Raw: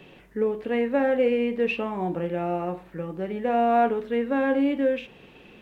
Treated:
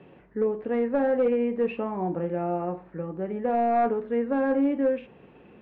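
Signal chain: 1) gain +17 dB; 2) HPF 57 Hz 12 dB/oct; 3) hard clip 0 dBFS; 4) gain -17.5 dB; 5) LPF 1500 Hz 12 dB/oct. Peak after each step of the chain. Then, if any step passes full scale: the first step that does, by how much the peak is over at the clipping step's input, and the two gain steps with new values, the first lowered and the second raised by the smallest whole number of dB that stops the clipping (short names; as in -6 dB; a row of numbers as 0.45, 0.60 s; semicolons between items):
+6.0, +6.5, 0.0, -17.5, -17.0 dBFS; step 1, 6.5 dB; step 1 +10 dB, step 4 -10.5 dB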